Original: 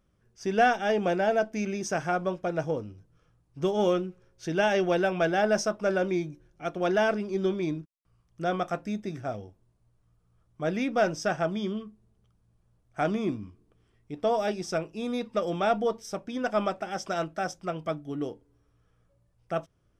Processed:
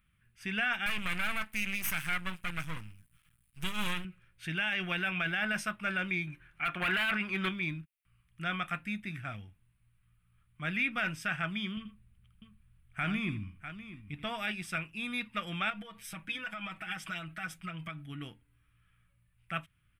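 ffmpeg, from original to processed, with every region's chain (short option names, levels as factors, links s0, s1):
-filter_complex "[0:a]asettb=1/sr,asplit=3[s0][s1][s2];[s0]atrim=end=0.864[s3];[s1]atrim=start=0.86:end=4.05,asetpts=PTS-STARTPTS,afade=t=in:d=0.004:c=qsin,afade=t=out:st=3.186:d=0.004:c=qsin,bass=f=250:g=1,treble=f=4000:g=15,aeval=exprs='max(val(0),0)':c=same[s4];[s2]atrim=start=4.046[s5];[s3][s4]acrossfade=d=0.004:c1=hsin:c2=qsin[s6];[s6][s5]acrossfade=d=0.004:c1=qsin:c2=hsin,asettb=1/sr,asplit=3[s7][s8][s9];[s7]atrim=end=6.274[s10];[s8]atrim=start=6.27:end=7.49,asetpts=PTS-STARTPTS,afade=t=in:d=0.004:c=qsin,afade=t=out:st=1.216:d=0.004:c=qsin,equalizer=f=1200:w=0.44:g=12.5,volume=6.31,asoftclip=hard,volume=0.158[s11];[s9]atrim=start=7.486[s12];[s10][s11]acrossfade=d=0.004:c1=hsin:c2=qsin[s13];[s13][s12]acrossfade=d=0.004:c1=qsin:c2=hsin,asettb=1/sr,asplit=3[s14][s15][s16];[s14]atrim=end=11.774[s17];[s15]atrim=start=11.77:end=14.26,asetpts=PTS-STARTPTS,afade=t=in:d=0.004:c=qsin,afade=t=out:st=2.486:d=0.004:c=qsin,lowshelf=f=140:g=8,aecho=1:1:82|647:0.211|0.211,atrim=end_sample=109809[s18];[s16]atrim=start=14.256[s19];[s17][s18]acrossfade=d=0.004:c1=hsin:c2=qsin[s20];[s20][s19]acrossfade=d=0.004:c1=qsin:c2=hsin,asettb=1/sr,asplit=3[s21][s22][s23];[s21]atrim=end=15.704[s24];[s22]atrim=start=15.7:end=18.06,asetpts=PTS-STARTPTS,afade=t=in:d=0.004:c=qsin,afade=t=out:st=2.356:d=0.004:c=qsin,aecho=1:1:6.2:1,atrim=end_sample=104076,acompressor=threshold=0.0282:ratio=8:attack=3.2:release=140:knee=1:detection=peak[s25];[s23]atrim=start=18.056[s26];[s24][s25]acrossfade=d=0.004:c1=hsin:c2=qsin[s27];[s27][s26]acrossfade=d=0.004:c1=qsin:c2=hsin,firequalizer=gain_entry='entry(150,0);entry(430,-20);entry(1300,3);entry(2400,13);entry(5700,-13);entry(9100,7)':delay=0.05:min_phase=1,alimiter=limit=0.106:level=0:latency=1:release=14,volume=0.794"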